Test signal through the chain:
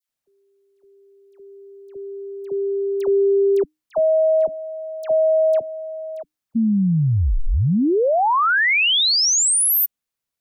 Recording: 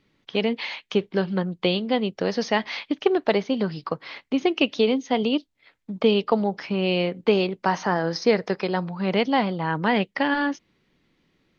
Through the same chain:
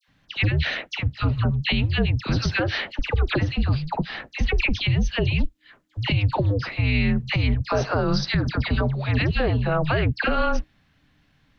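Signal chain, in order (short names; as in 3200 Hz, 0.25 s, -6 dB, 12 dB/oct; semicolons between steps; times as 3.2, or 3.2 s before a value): dispersion lows, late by 84 ms, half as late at 1700 Hz; limiter -18 dBFS; frequency shift -310 Hz; gain +5 dB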